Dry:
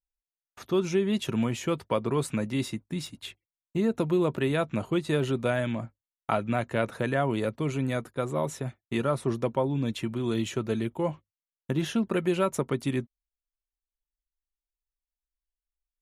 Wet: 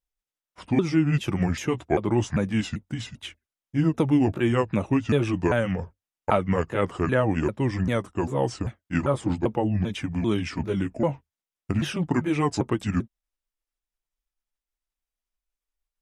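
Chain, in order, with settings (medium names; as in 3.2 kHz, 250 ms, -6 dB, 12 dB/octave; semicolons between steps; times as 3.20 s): sawtooth pitch modulation -7 st, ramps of 394 ms; treble shelf 5.8 kHz -4.5 dB; band-stop 4.3 kHz, Q 14; trim +5 dB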